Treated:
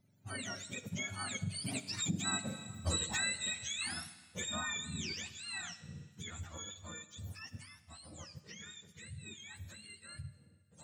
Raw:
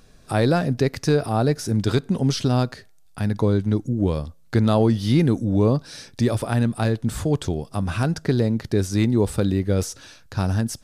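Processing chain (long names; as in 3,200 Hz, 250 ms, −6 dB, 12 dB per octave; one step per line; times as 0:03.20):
frequency axis turned over on the octave scale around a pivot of 940 Hz
source passing by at 0:02.78, 34 m/s, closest 2.7 metres
low-shelf EQ 200 Hz +6 dB
four-comb reverb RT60 1.5 s, combs from 28 ms, DRR 13 dB
downward compressor 3 to 1, threshold −45 dBFS, peak gain reduction 11.5 dB
level +10.5 dB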